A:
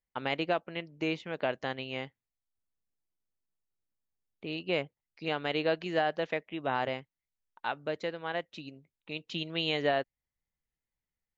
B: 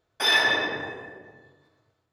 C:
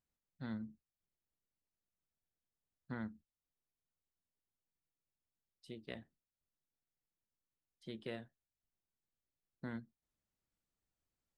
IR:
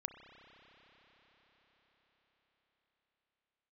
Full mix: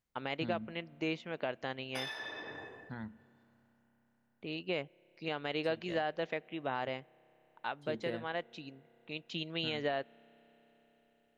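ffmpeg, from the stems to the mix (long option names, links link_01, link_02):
-filter_complex "[0:a]volume=-4dB,asplit=2[link_01][link_02];[link_02]volume=-20dB[link_03];[1:a]acompressor=threshold=-28dB:ratio=6,adelay=1750,volume=-12dB[link_04];[2:a]aphaser=in_gain=1:out_gain=1:delay=1.9:decay=0.41:speed=0.24:type=sinusoidal,volume=-3dB,asplit=3[link_05][link_06][link_07];[link_06]volume=-7dB[link_08];[link_07]apad=whole_len=170898[link_09];[link_04][link_09]sidechaincompress=threshold=-57dB:ratio=8:attack=16:release=183[link_10];[3:a]atrim=start_sample=2205[link_11];[link_03][link_08]amix=inputs=2:normalize=0[link_12];[link_12][link_11]afir=irnorm=-1:irlink=0[link_13];[link_01][link_10][link_05][link_13]amix=inputs=4:normalize=0,alimiter=limit=-23dB:level=0:latency=1:release=169"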